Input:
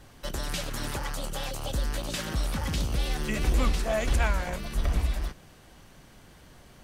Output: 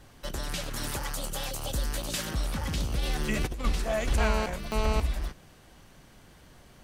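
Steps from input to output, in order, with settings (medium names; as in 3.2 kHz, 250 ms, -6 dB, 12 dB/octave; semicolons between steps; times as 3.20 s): 0.76–2.31 s: treble shelf 5.8 kHz +7.5 dB; 3.00–3.65 s: compressor with a negative ratio -26 dBFS, ratio -0.5; 4.18–5.00 s: mobile phone buzz -29 dBFS; trim -1.5 dB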